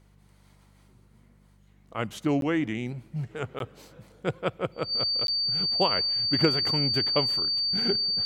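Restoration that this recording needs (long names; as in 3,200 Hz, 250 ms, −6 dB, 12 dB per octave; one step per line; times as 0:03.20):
clipped peaks rebuilt −10 dBFS
hum removal 49.3 Hz, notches 4
notch filter 4,600 Hz, Q 30
repair the gap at 0:02.41/0:03.59/0:05.27, 12 ms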